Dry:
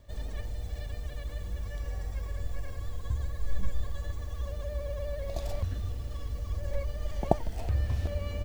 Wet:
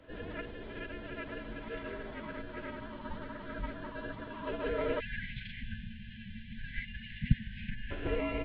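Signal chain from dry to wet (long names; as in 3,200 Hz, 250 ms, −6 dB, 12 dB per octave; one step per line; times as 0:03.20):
single-sideband voice off tune −120 Hz 150–3,600 Hz
phase-vocoder pitch shift with formants kept −8.5 semitones
time-frequency box erased 0:05.00–0:07.91, 250–1,500 Hz
level +8.5 dB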